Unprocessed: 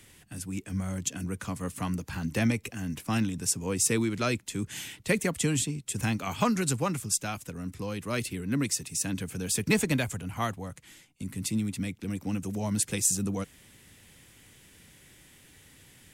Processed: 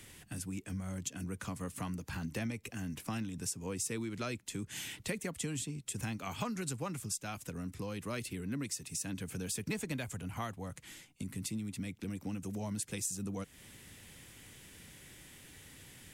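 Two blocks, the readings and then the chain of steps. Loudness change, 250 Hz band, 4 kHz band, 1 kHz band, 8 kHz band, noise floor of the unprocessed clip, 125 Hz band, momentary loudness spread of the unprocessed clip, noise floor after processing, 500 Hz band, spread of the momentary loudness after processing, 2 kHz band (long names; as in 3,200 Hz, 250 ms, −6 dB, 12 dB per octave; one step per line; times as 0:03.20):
−9.5 dB, −9.0 dB, −8.5 dB, −9.5 dB, −10.0 dB, −57 dBFS, −8.5 dB, 11 LU, −59 dBFS, −10.0 dB, 16 LU, −9.5 dB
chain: downward compressor 3 to 1, threshold −40 dBFS, peak gain reduction 15 dB
level +1 dB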